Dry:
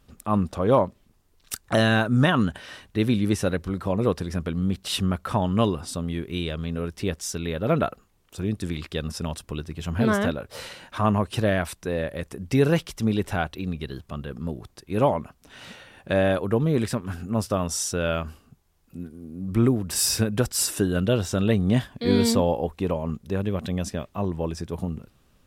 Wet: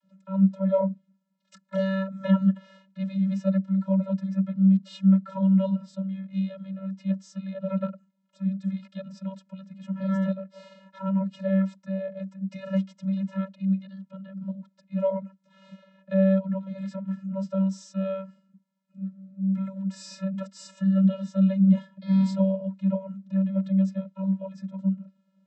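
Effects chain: vocoder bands 32, square 192 Hz

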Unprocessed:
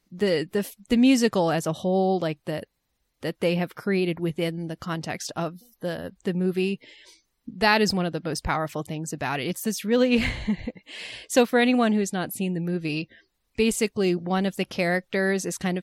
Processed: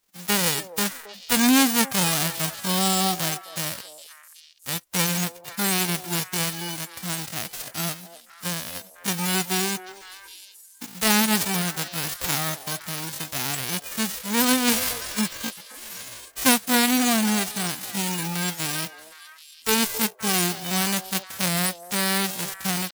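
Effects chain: formants flattened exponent 0.1; repeats whose band climbs or falls 179 ms, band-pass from 560 Hz, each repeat 1.4 oct, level -9 dB; tempo 0.69×

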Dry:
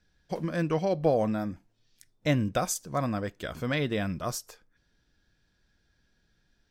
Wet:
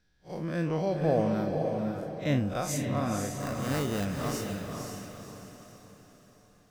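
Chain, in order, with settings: spectral blur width 88 ms; 3.38–4.05 s: sample-rate reducer 3.3 kHz, jitter 0%; on a send: echo that smears into a reverb 522 ms, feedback 43%, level -3.5 dB

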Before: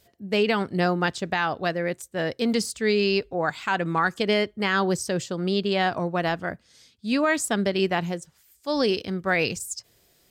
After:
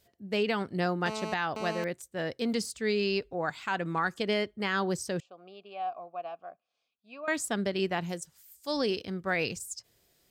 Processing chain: 1.06–1.84 s: mobile phone buzz -30 dBFS; 5.20–7.28 s: vowel filter a; 8.09–8.77 s: treble shelf 4.9 kHz +11.5 dB; trim -6.5 dB

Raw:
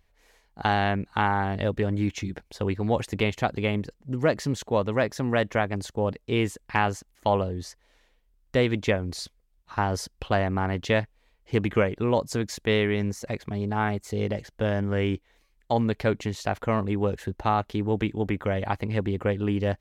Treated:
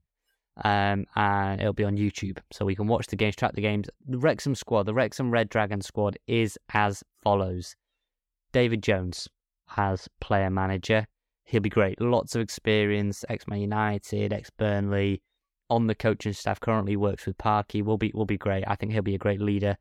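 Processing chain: spectral noise reduction 23 dB; 9.12–10.66 s: low-pass that closes with the level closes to 2.6 kHz, closed at -23.5 dBFS

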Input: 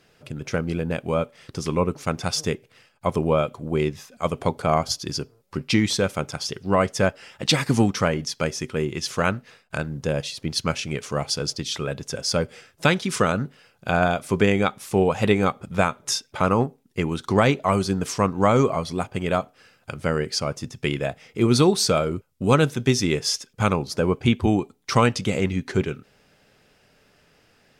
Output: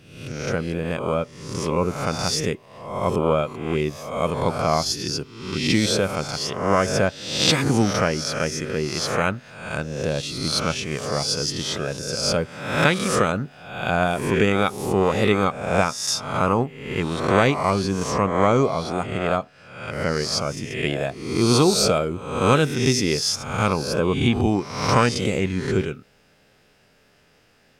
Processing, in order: reverse spectral sustain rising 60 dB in 0.79 s; 17.70–19.93 s: treble shelf 9.8 kHz -11 dB; trim -1.5 dB

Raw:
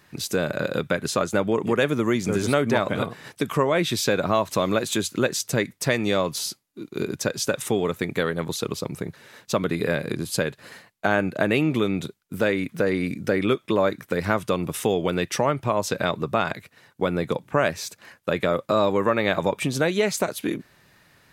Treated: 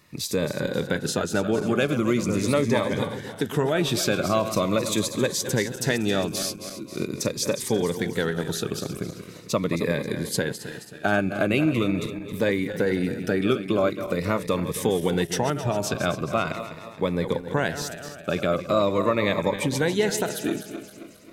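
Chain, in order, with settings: backward echo that repeats 134 ms, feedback 69%, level -10.5 dB; Shepard-style phaser falling 0.42 Hz

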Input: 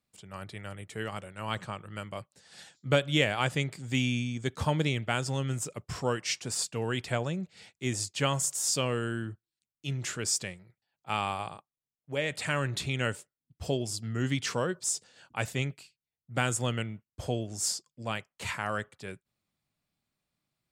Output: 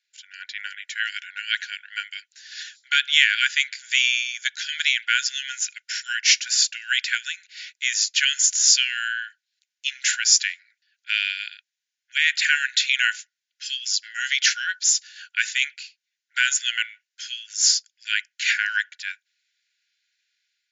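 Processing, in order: level rider gain up to 5 dB; in parallel at -1 dB: peak limiter -13.5 dBFS, peak gain reduction 9 dB; on the sum: brick-wall FIR band-pass 1.4–7.3 kHz; trim +5 dB

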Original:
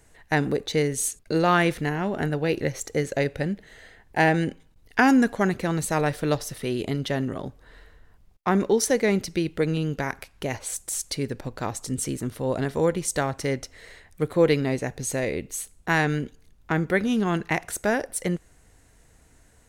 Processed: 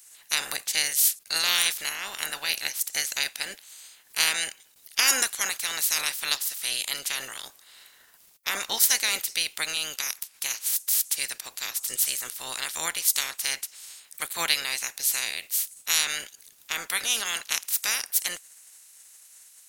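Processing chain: spectral peaks clipped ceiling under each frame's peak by 27 dB; pre-emphasis filter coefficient 0.97; trim +5.5 dB

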